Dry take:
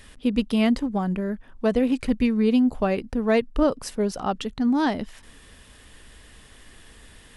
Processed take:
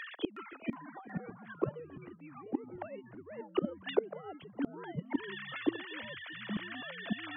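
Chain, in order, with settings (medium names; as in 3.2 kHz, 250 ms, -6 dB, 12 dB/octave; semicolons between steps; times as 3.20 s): formants replaced by sine waves; reverse; compression 16:1, threshold -27 dBFS, peak gain reduction 18.5 dB; reverse; inverted gate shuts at -32 dBFS, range -33 dB; resonant low shelf 320 Hz -7.5 dB, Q 1.5; ever faster or slower copies 365 ms, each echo -5 st, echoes 3; trim +16.5 dB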